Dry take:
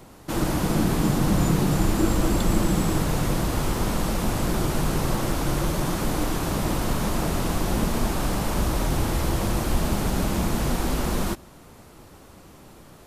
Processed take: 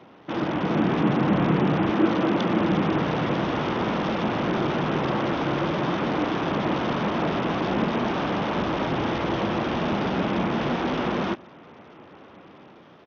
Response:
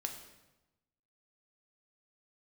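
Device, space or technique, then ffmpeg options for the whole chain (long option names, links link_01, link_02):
Bluetooth headset: -filter_complex "[0:a]asettb=1/sr,asplit=3[link_01][link_02][link_03];[link_01]atrim=end=1.904[link_04];[link_02]atrim=start=1.9:end=2.61,asetpts=PTS-STARTPTS,afade=type=in:duration=0.004:curve=qsin,afade=type=out:start_time=0.706:duration=0.004:curve=qsin,highpass=120[link_05];[link_03]atrim=start=2.606[link_06];[link_04][link_05]acrossfade=duration=0.004:curve1=hsin:curve2=qsin[link_07];[link_07][link_06]acrossfade=duration=0.004:curve1=qsin:curve2=hsin,highpass=190,dynaudnorm=framelen=200:gausssize=7:maxgain=3.5dB,aresample=8000,aresample=44100" -ar 48000 -c:a sbc -b:a 64k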